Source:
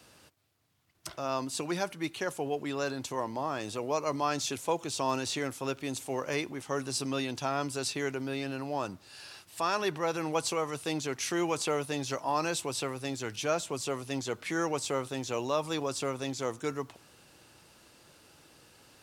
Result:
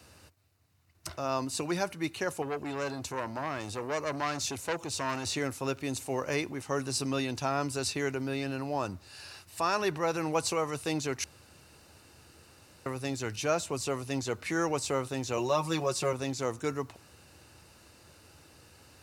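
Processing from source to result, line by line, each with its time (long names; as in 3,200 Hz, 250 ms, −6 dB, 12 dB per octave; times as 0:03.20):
0:02.42–0:05.25: saturating transformer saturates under 2,000 Hz
0:11.24–0:12.86: fill with room tone
0:15.37–0:16.13: comb filter 5.5 ms, depth 73%
whole clip: parametric band 80 Hz +13 dB 0.66 octaves; notch filter 3,300 Hz, Q 8.5; level +1 dB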